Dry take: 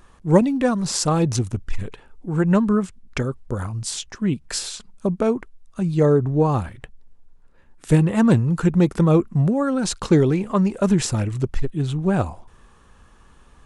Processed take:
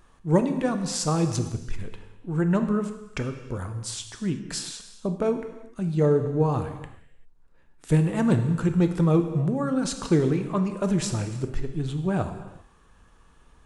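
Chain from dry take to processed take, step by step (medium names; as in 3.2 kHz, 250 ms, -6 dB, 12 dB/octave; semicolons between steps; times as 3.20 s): gated-style reverb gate 420 ms falling, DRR 6.5 dB; trim -6 dB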